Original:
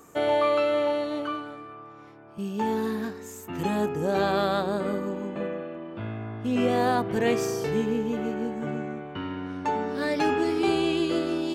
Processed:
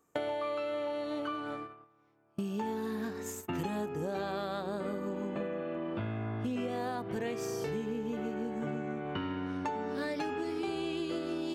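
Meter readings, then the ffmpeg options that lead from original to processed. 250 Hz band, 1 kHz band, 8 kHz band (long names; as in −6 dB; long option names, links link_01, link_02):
−8.0 dB, −9.5 dB, −6.0 dB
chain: -af "agate=range=-26dB:threshold=-40dB:ratio=16:detection=peak,acompressor=threshold=-38dB:ratio=10,volume=5.5dB"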